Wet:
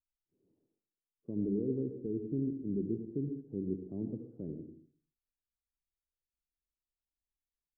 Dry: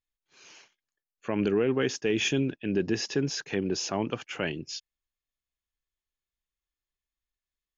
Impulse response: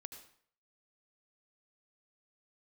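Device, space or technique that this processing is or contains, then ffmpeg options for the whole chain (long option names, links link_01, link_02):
next room: -filter_complex "[0:a]lowpass=frequency=360:width=0.5412,lowpass=frequency=360:width=1.3066[link_01];[1:a]atrim=start_sample=2205[link_02];[link_01][link_02]afir=irnorm=-1:irlink=0"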